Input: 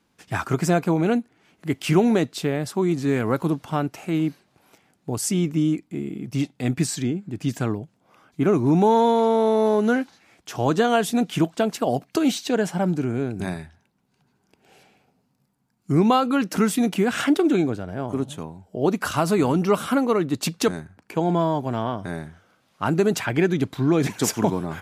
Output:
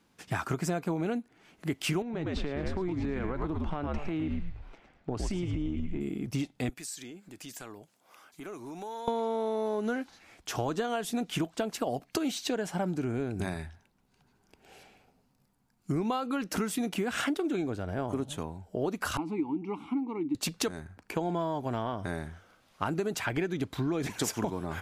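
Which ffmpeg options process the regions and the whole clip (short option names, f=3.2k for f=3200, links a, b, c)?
-filter_complex "[0:a]asettb=1/sr,asplit=3[a][b][c];[a]atrim=end=2.024[d];[b]atrim=start=2.02:end=6.01,asetpts=PTS-STARTPTS,afade=t=in:d=0.004:c=qsin,afade=t=out:st=3.986:d=0.004:c=qsin,highpass=100,lowpass=3.1k,asplit=5[e][f][g][h][i];[f]adelay=109,afreqshift=-71,volume=-6dB[j];[g]adelay=218,afreqshift=-142,volume=-16.2dB[k];[h]adelay=327,afreqshift=-213,volume=-26.3dB[l];[i]adelay=436,afreqshift=-284,volume=-36.5dB[m];[e][j][k][l][m]amix=inputs=5:normalize=0,atrim=end_sample=175959,acompressor=threshold=-24dB:ratio=6:attack=3.2:release=140:knee=1:detection=peak[n];[c]atrim=start=6.006[o];[d][n]acrossfade=d=0.004:c1=hsin:c2=qsin[p];[p][o]acrossfade=d=0.004:c1=qsin:c2=hsin,asettb=1/sr,asplit=3[q][r][s];[q]atrim=end=6.694[t];[r]atrim=start=6.69:end=9.08,asetpts=PTS-STARTPTS,afade=t=in:d=0.004:c=qsin,afade=t=out:st=2.386:d=0.004:c=qsin,highpass=f=620:p=1,aemphasis=mode=production:type=cd,acompressor=threshold=-45dB:ratio=2.5:attack=3.2:release=140:knee=1:detection=peak[u];[s]atrim=start=9.076[v];[t][u]acrossfade=d=0.004:c1=hsin:c2=qsin[w];[w][v]acrossfade=d=0.004:c1=qsin:c2=hsin,asettb=1/sr,asplit=3[x][y][z];[x]atrim=end=19.174[aa];[y]atrim=start=19.17:end=20.35,asetpts=PTS-STARTPTS,afade=t=in:d=0.004:c=qsin,afade=t=out:st=1.176:d=0.004:c=qsin,asplit=3[ab][ac][ad];[ab]bandpass=f=300:t=q:w=8,volume=0dB[ae];[ac]bandpass=f=870:t=q:w=8,volume=-6dB[af];[ad]bandpass=f=2.24k:t=q:w=8,volume=-9dB[ag];[ae][af][ag]amix=inputs=3:normalize=0,lowshelf=f=220:g=10.5[ah];[z]atrim=start=20.346[ai];[aa][ah]acrossfade=d=0.004:c1=hsin:c2=qsin[aj];[aj][ai]acrossfade=d=0.004:c1=qsin:c2=hsin,asubboost=boost=6:cutoff=54,acompressor=threshold=-28dB:ratio=6"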